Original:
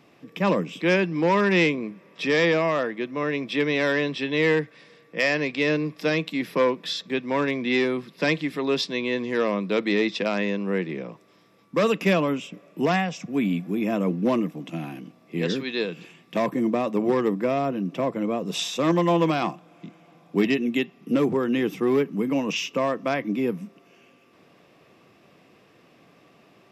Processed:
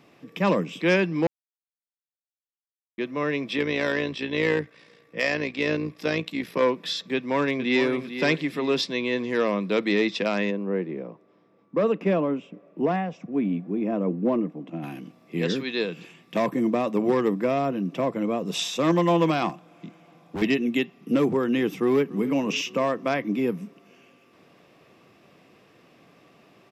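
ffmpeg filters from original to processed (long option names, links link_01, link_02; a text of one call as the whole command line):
ffmpeg -i in.wav -filter_complex "[0:a]asplit=3[link_01][link_02][link_03];[link_01]afade=type=out:start_time=3.56:duration=0.02[link_04];[link_02]tremolo=f=58:d=0.571,afade=type=in:start_time=3.56:duration=0.02,afade=type=out:start_time=6.61:duration=0.02[link_05];[link_03]afade=type=in:start_time=6.61:duration=0.02[link_06];[link_04][link_05][link_06]amix=inputs=3:normalize=0,asplit=2[link_07][link_08];[link_08]afade=type=in:start_time=7.14:duration=0.01,afade=type=out:start_time=7.9:duration=0.01,aecho=0:1:450|900|1350|1800:0.316228|0.11068|0.0387379|0.0135583[link_09];[link_07][link_09]amix=inputs=2:normalize=0,asplit=3[link_10][link_11][link_12];[link_10]afade=type=out:start_time=10.5:duration=0.02[link_13];[link_11]bandpass=frequency=390:width_type=q:width=0.56,afade=type=in:start_time=10.5:duration=0.02,afade=type=out:start_time=14.82:duration=0.02[link_14];[link_12]afade=type=in:start_time=14.82:duration=0.02[link_15];[link_13][link_14][link_15]amix=inputs=3:normalize=0,asettb=1/sr,asplit=3[link_16][link_17][link_18];[link_16]atrim=end=19.494[link_19];[link_17]atrim=start=19.49:end=20.42,asetpts=PTS-STARTPTS,afade=type=in:duration=0.004:curve=qsin,afade=type=out:start_time=0.926:duration=0.004:curve=qsin,volume=28dB,asoftclip=hard,volume=-28dB[link_20];[link_18]atrim=start=20.416[link_21];[link_19][link_20]acrossfade=duration=0.004:curve1=hsin:curve2=qsin[link_22];[link_22][link_21]acrossfade=duration=0.004:curve1=qsin:curve2=hsin,asplit=2[link_23][link_24];[link_24]afade=type=in:start_time=21.82:duration=0.01,afade=type=out:start_time=22.33:duration=0.01,aecho=0:1:280|560|840|1120|1400|1680:0.125893|0.0818302|0.0531896|0.0345732|0.0224726|0.0146072[link_25];[link_23][link_25]amix=inputs=2:normalize=0,asplit=3[link_26][link_27][link_28];[link_26]atrim=end=1.27,asetpts=PTS-STARTPTS,afade=type=out:start_time=1.266:duration=0.004:curve=hsin[link_29];[link_27]atrim=start=1.27:end=2.98,asetpts=PTS-STARTPTS,volume=0[link_30];[link_28]atrim=start=2.98,asetpts=PTS-STARTPTS,afade=type=in:duration=0.004:curve=hsin[link_31];[link_29][link_30][link_31]concat=n=3:v=0:a=1" out.wav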